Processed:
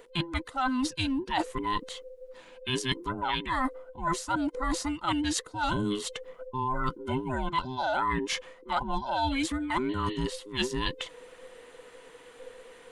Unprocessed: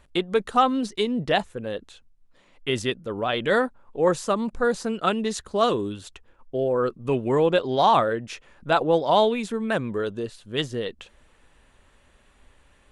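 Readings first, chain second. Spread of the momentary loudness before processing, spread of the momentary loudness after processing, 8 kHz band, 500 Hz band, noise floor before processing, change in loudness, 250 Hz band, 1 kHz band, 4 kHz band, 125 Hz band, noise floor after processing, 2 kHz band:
13 LU, 19 LU, +2.0 dB, -13.5 dB, -59 dBFS, -6.5 dB, -4.0 dB, -5.5 dB, -2.5 dB, -3.0 dB, -53 dBFS, -3.5 dB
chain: band inversion scrambler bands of 500 Hz; spectral repair 9.92–10.19, 1700–4500 Hz after; bell 74 Hz -11 dB 2.5 oct; reverse; compressor 16:1, threshold -33 dBFS, peak gain reduction 20 dB; reverse; gain +7.5 dB

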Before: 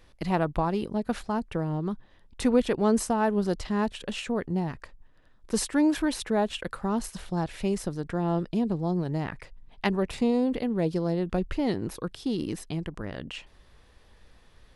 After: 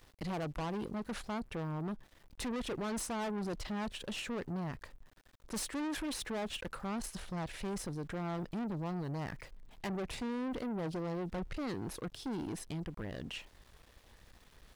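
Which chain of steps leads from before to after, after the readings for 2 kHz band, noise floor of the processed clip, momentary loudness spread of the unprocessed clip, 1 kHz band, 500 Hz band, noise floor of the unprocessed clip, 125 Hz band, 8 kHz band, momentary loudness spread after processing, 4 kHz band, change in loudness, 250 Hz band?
-7.5 dB, -63 dBFS, 10 LU, -10.5 dB, -12.5 dB, -57 dBFS, -9.5 dB, -6.5 dB, 6 LU, -6.0 dB, -11.0 dB, -11.5 dB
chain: tube stage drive 33 dB, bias 0.3; sample gate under -57.5 dBFS; gain -2 dB

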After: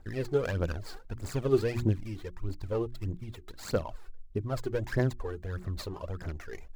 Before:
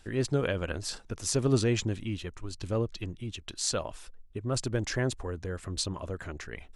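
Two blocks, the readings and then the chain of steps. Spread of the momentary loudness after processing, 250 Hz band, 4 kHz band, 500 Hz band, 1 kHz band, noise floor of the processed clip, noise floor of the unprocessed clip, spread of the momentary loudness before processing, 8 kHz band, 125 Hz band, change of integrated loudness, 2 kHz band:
13 LU, -2.5 dB, -11.0 dB, +1.0 dB, -1.0 dB, -48 dBFS, -52 dBFS, 14 LU, -15.5 dB, -0.5 dB, -1.5 dB, -3.5 dB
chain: median filter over 15 samples; notches 60/120/180/240/300/360 Hz; phaser 1.6 Hz, delay 2.8 ms, feedback 64%; gain -2.5 dB

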